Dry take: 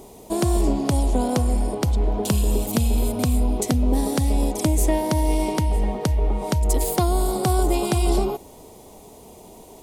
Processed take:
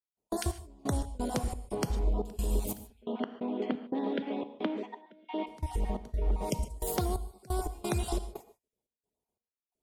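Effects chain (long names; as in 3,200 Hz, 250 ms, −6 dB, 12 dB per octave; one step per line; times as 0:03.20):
time-frequency cells dropped at random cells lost 21%
0:02.90–0:05.47: Chebyshev band-pass filter 210–3,400 Hz, order 4
noise gate −33 dBFS, range −39 dB
downward compressor 3 to 1, threshold −23 dBFS, peak gain reduction 6.5 dB
gate pattern ".xx..x.xx.xxx" 88 BPM −24 dB
reverb whose tail is shaped and stops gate 170 ms flat, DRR 11.5 dB
level −5 dB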